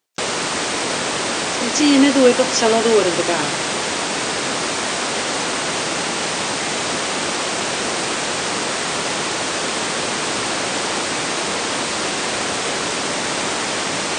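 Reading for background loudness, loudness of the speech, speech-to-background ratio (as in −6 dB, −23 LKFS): −20.0 LKFS, −16.5 LKFS, 3.5 dB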